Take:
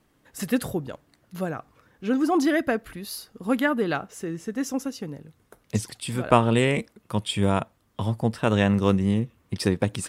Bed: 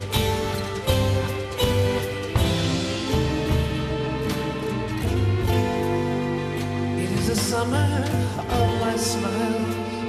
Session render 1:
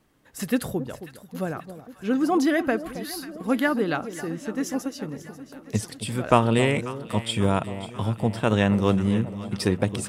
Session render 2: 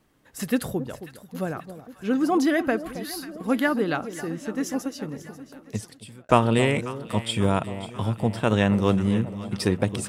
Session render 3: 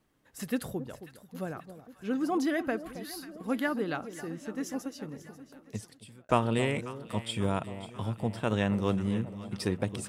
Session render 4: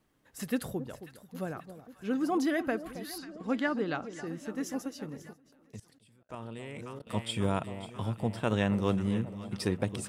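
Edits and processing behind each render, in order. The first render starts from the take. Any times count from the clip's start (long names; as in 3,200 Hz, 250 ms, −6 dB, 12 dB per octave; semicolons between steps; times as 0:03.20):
delay that swaps between a low-pass and a high-pass 270 ms, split 940 Hz, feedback 76%, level −12 dB
0:05.35–0:06.29: fade out
level −7.5 dB
0:03.18–0:04.27: low-pass filter 7,600 Hz 24 dB per octave; 0:05.33–0:07.07: output level in coarse steps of 21 dB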